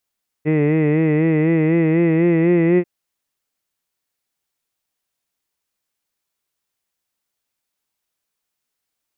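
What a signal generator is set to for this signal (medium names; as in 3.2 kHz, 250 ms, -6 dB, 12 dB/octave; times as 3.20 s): formant-synthesis vowel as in hid, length 2.39 s, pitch 150 Hz, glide +2.5 st, vibrato 4 Hz, vibrato depth 0.7 st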